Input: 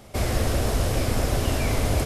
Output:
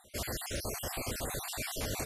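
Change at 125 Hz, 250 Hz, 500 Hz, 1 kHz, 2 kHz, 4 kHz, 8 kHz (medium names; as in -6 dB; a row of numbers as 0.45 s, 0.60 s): -18.0 dB, -15.0 dB, -13.0 dB, -11.5 dB, -8.5 dB, -7.5 dB, -5.0 dB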